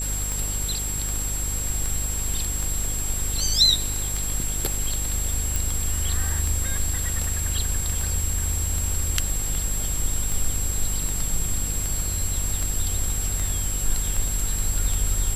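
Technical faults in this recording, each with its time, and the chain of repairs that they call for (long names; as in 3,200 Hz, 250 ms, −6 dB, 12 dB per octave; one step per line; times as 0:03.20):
mains buzz 50 Hz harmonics 11 −30 dBFS
scratch tick 78 rpm
whistle 7,600 Hz −28 dBFS
0:05.56: click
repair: click removal
hum removal 50 Hz, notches 11
notch filter 7,600 Hz, Q 30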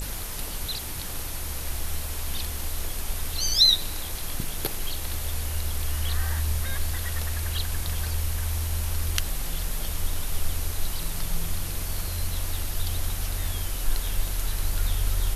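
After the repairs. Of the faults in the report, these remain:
none of them is left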